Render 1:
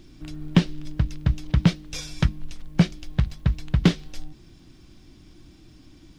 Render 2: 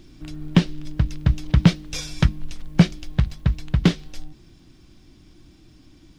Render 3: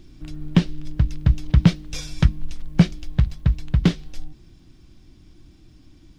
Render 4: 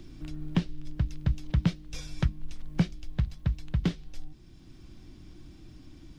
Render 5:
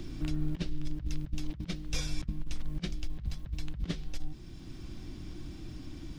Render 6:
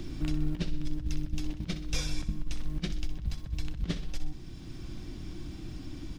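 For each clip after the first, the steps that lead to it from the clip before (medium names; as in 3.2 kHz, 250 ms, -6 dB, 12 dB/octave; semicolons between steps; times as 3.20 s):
gain riding 2 s; trim +2 dB
bass shelf 140 Hz +6.5 dB; trim -3 dB
three bands compressed up and down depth 40%; trim -9 dB
compressor with a negative ratio -32 dBFS, ratio -0.5; trim +2.5 dB
feedback delay 63 ms, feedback 53%, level -12 dB; trim +2 dB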